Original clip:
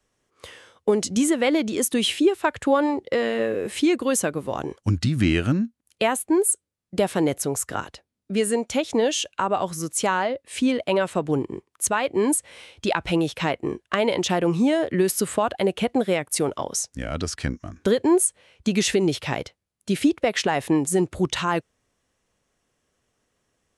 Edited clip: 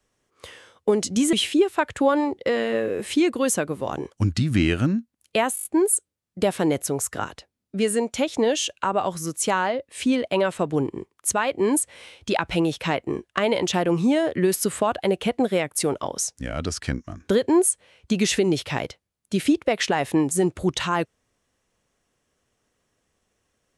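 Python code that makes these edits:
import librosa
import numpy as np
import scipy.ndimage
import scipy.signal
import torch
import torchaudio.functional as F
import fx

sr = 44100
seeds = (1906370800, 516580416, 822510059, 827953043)

y = fx.edit(x, sr, fx.cut(start_s=1.33, length_s=0.66),
    fx.stutter(start_s=6.21, slice_s=0.02, count=6), tone=tone)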